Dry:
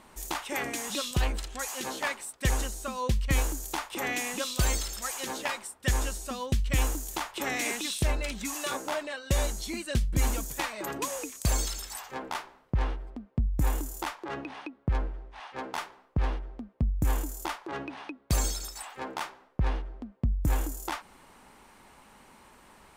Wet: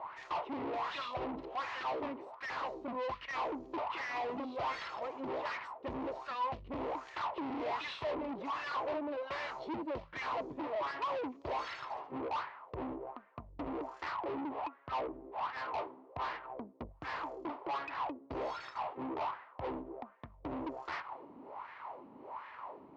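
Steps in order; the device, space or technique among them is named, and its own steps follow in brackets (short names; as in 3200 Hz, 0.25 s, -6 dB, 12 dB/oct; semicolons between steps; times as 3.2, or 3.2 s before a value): wah-wah guitar rig (wah 1.3 Hz 250–1800 Hz, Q 4; tube stage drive 53 dB, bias 0.35; speaker cabinet 80–4200 Hz, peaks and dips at 210 Hz -9 dB, 630 Hz +4 dB, 1000 Hz +7 dB, 1600 Hz -7 dB, 3500 Hz -3 dB); gain +16.5 dB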